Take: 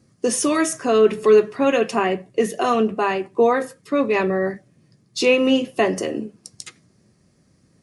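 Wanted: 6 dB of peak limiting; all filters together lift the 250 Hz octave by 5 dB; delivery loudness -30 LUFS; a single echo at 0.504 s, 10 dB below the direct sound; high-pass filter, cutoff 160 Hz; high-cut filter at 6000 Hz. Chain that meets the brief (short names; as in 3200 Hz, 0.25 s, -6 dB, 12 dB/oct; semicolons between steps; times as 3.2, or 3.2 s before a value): HPF 160 Hz; LPF 6000 Hz; bell 250 Hz +6.5 dB; limiter -9.5 dBFS; echo 0.504 s -10 dB; gain -10.5 dB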